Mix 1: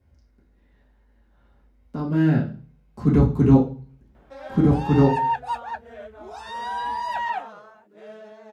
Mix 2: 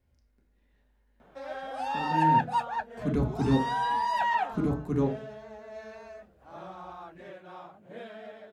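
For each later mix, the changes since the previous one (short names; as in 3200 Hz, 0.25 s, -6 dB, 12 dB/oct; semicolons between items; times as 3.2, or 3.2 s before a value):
speech: send -10.5 dB; background: entry -2.95 s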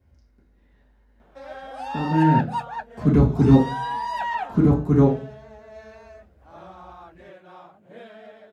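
speech: send +11.0 dB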